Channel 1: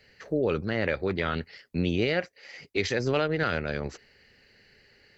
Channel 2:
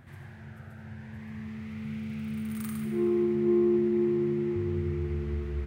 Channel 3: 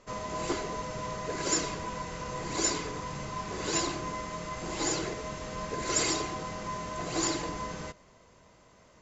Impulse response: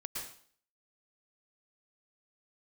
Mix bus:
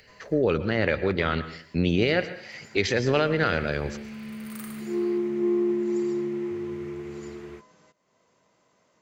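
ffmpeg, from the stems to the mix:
-filter_complex "[0:a]volume=1.5dB,asplit=3[link_01][link_02][link_03];[link_02]volume=-9dB[link_04];[1:a]highpass=260,dynaudnorm=framelen=700:gausssize=3:maxgain=4.5dB,adelay=1950,volume=-3dB[link_05];[2:a]highpass=160,acompressor=threshold=-37dB:ratio=2,volume=-17.5dB[link_06];[link_03]apad=whole_len=397524[link_07];[link_06][link_07]sidechaincompress=threshold=-46dB:ratio=8:attack=16:release=265[link_08];[3:a]atrim=start_sample=2205[link_09];[link_04][link_09]afir=irnorm=-1:irlink=0[link_10];[link_01][link_05][link_08][link_10]amix=inputs=4:normalize=0,acompressor=mode=upward:threshold=-55dB:ratio=2.5"

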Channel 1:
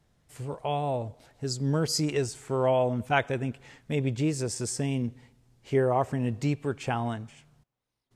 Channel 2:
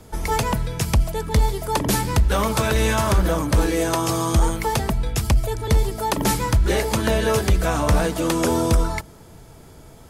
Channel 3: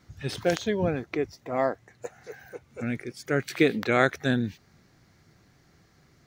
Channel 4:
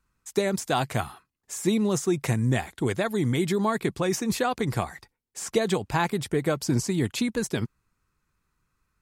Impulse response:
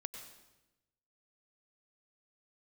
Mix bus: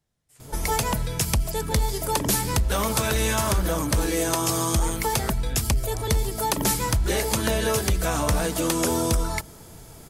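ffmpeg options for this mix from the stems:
-filter_complex "[0:a]acompressor=threshold=-27dB:ratio=6,volume=-11.5dB[link_01];[1:a]adelay=400,volume=-1dB[link_02];[2:a]adelay=1250,volume=-17dB[link_03];[link_01][link_02][link_03]amix=inputs=3:normalize=0,highshelf=frequency=4500:gain=9,acompressor=threshold=-22dB:ratio=2"

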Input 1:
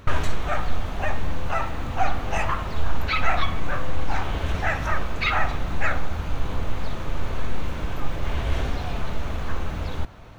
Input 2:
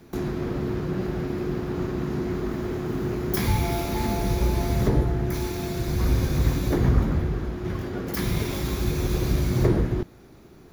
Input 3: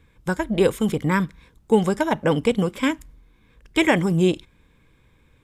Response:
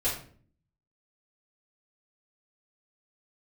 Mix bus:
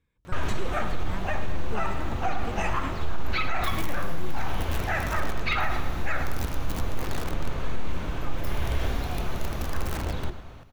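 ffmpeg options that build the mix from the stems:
-filter_complex "[0:a]adelay=250,volume=-2.5dB,asplit=2[link_01][link_02];[link_02]volume=-11.5dB[link_03];[1:a]equalizer=frequency=14000:width_type=o:width=2.1:gain=3.5,aeval=exprs='(mod(5.62*val(0)+1,2)-1)/5.62':channel_layout=same,adelay=300,volume=-15dB[link_04];[2:a]volume=-19dB[link_05];[link_03]aecho=0:1:105|210|315|420|525|630|735:1|0.48|0.23|0.111|0.0531|0.0255|0.0122[link_06];[link_01][link_04][link_05][link_06]amix=inputs=4:normalize=0,alimiter=limit=-15.5dB:level=0:latency=1:release=34"

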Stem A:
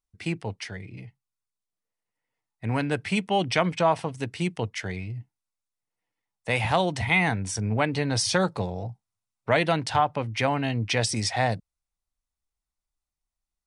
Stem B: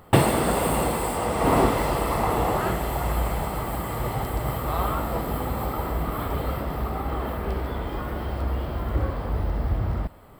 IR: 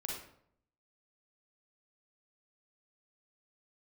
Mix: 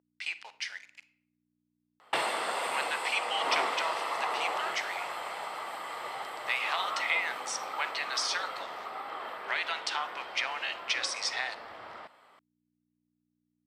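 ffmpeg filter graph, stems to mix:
-filter_complex "[0:a]highpass=1100,acompressor=threshold=-28dB:ratio=6,aeval=exprs='val(0)*gte(abs(val(0)),0.00422)':channel_layout=same,volume=-4dB,asplit=2[link_01][link_02];[link_02]volume=-11dB[link_03];[1:a]acontrast=86,adelay=2000,volume=-13dB[link_04];[2:a]atrim=start_sample=2205[link_05];[link_03][link_05]afir=irnorm=-1:irlink=0[link_06];[link_01][link_04][link_06]amix=inputs=3:normalize=0,tiltshelf=frequency=880:gain=-6,aeval=exprs='val(0)+0.00178*(sin(2*PI*60*n/s)+sin(2*PI*2*60*n/s)/2+sin(2*PI*3*60*n/s)/3+sin(2*PI*4*60*n/s)/4+sin(2*PI*5*60*n/s)/5)':channel_layout=same,highpass=570,lowpass=5200"

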